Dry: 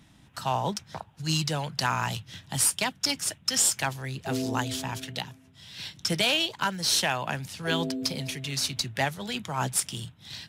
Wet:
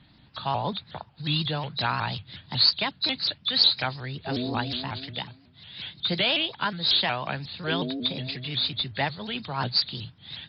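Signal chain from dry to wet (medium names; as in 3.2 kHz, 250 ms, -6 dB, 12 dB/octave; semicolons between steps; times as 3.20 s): knee-point frequency compression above 3.4 kHz 4:1; vibrato with a chosen wave saw up 5.5 Hz, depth 160 cents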